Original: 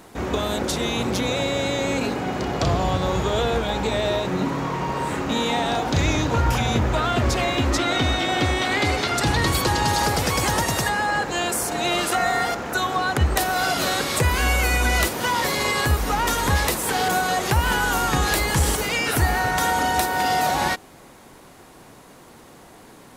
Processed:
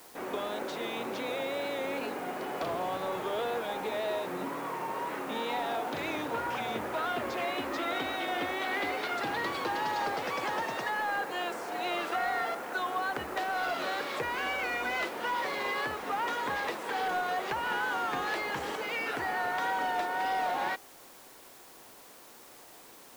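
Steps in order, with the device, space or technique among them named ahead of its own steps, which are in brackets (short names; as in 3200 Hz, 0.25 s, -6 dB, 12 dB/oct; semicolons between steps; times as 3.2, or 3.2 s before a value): tape answering machine (BPF 350–2800 Hz; soft clip -15 dBFS, distortion -22 dB; wow and flutter; white noise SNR 21 dB); gain -7.5 dB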